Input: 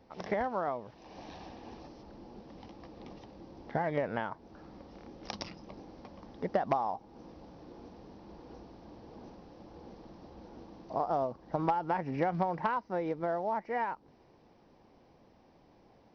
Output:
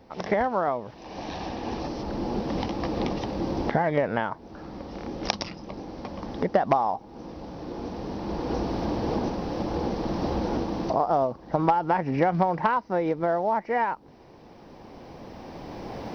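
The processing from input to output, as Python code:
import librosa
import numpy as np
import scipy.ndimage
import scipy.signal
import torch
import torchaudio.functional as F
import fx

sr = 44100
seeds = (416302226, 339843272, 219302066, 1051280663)

y = fx.recorder_agc(x, sr, target_db=-26.0, rise_db_per_s=8.5, max_gain_db=30)
y = y * 10.0 ** (8.0 / 20.0)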